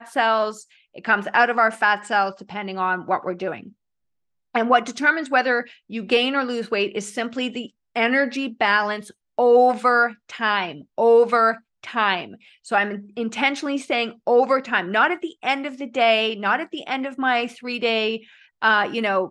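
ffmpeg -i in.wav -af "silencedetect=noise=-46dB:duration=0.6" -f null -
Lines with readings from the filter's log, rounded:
silence_start: 3.72
silence_end: 4.54 | silence_duration: 0.82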